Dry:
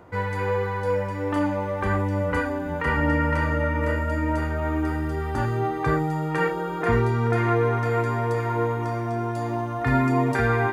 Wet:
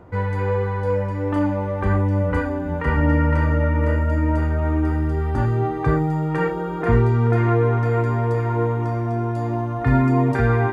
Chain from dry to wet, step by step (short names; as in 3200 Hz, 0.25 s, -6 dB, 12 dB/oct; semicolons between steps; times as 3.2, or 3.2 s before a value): tilt -2 dB/oct